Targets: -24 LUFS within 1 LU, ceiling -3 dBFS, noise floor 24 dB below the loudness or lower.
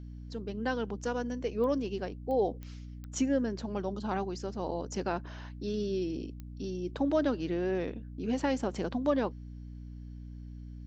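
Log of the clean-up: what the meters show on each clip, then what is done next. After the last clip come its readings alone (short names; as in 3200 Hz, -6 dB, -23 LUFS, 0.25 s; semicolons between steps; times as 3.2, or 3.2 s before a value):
clicks 5; hum 60 Hz; harmonics up to 300 Hz; hum level -41 dBFS; loudness -33.5 LUFS; peak -17.5 dBFS; loudness target -24.0 LUFS
-> de-click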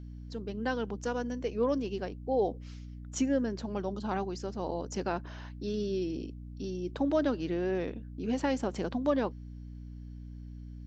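clicks 0; hum 60 Hz; harmonics up to 300 Hz; hum level -41 dBFS
-> notches 60/120/180/240/300 Hz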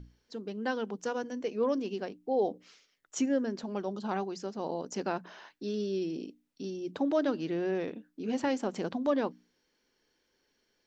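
hum none; loudness -33.5 LUFS; peak -17.0 dBFS; loudness target -24.0 LUFS
-> gain +9.5 dB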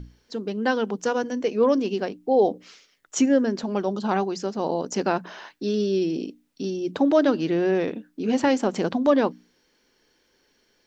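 loudness -24.0 LUFS; peak -7.5 dBFS; noise floor -67 dBFS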